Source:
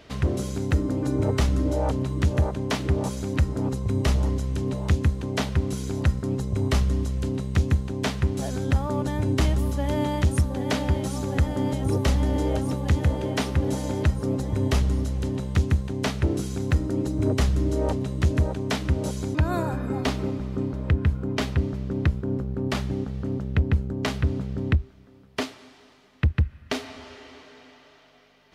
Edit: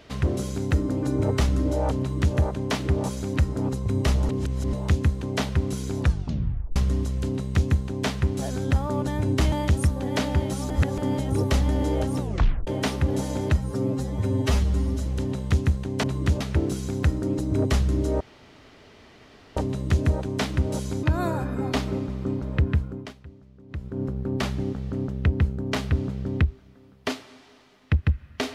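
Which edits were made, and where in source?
1.99–2.36 s: copy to 16.08 s
4.29–4.73 s: reverse
6.01 s: tape stop 0.75 s
9.52–10.06 s: delete
11.24–11.52 s: reverse
12.74 s: tape stop 0.47 s
14.12–15.11 s: stretch 1.5×
17.88 s: insert room tone 1.36 s
21.04–22.41 s: dip -21 dB, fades 0.41 s

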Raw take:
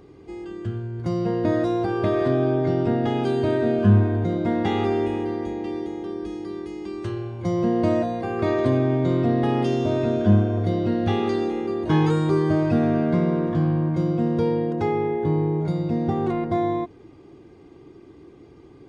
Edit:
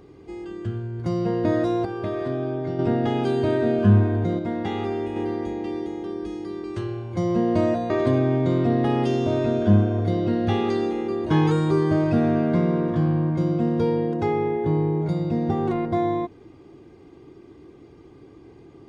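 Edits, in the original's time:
1.85–2.79 s: gain -6 dB
4.39–5.16 s: gain -4.5 dB
6.64–6.92 s: delete
8.18–8.49 s: delete

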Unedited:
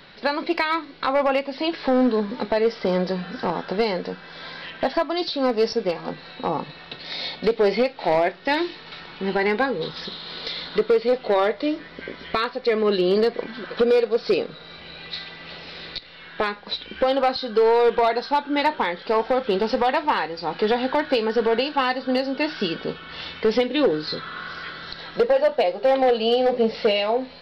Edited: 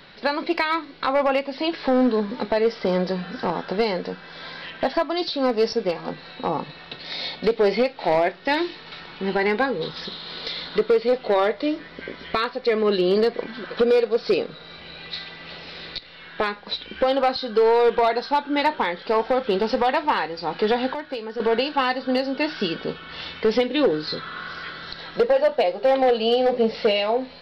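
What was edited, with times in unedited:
20.94–21.40 s: gain -9.5 dB

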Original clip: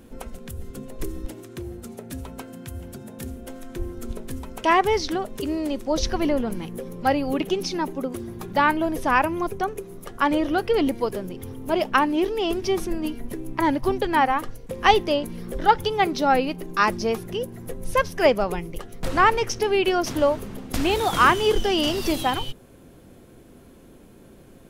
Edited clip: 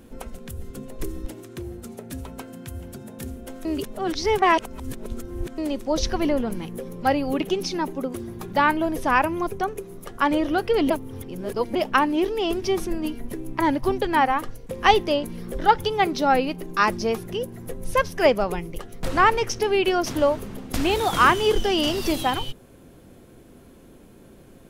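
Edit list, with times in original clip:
3.65–5.58 s: reverse
10.90–11.75 s: reverse

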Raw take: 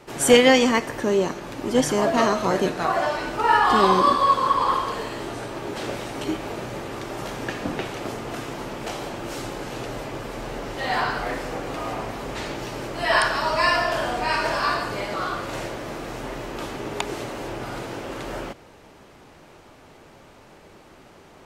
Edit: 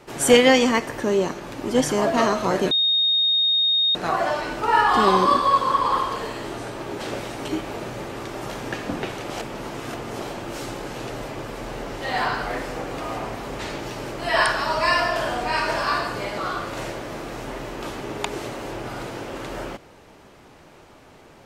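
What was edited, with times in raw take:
2.71 s: add tone 3.71 kHz -16.5 dBFS 1.24 s
8.06–8.98 s: reverse

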